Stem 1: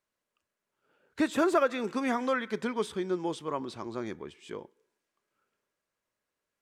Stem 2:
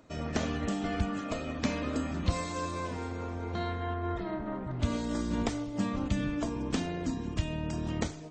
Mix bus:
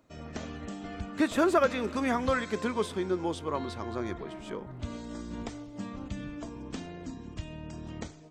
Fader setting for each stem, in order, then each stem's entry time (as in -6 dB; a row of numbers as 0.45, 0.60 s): +1.0, -7.5 dB; 0.00, 0.00 s